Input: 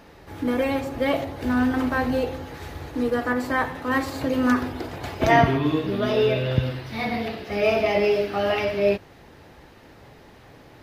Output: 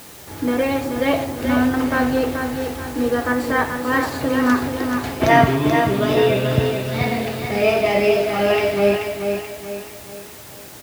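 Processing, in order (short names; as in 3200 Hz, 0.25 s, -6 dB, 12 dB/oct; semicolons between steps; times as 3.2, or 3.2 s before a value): HPF 63 Hz; in parallel at -6 dB: requantised 6-bit, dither triangular; on the sum: feedback echo 0.432 s, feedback 42%, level -6 dB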